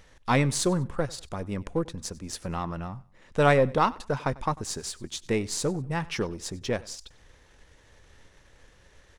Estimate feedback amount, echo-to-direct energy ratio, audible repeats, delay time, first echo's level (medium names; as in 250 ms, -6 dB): 33%, -21.5 dB, 2, 96 ms, -22.0 dB